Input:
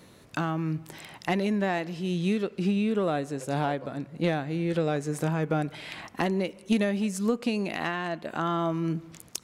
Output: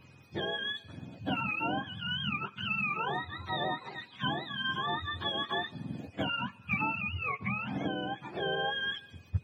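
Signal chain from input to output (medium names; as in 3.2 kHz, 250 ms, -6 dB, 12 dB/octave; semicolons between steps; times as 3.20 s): spectrum inverted on a logarithmic axis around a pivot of 730 Hz; whistle 2.5 kHz -60 dBFS; trim -3.5 dB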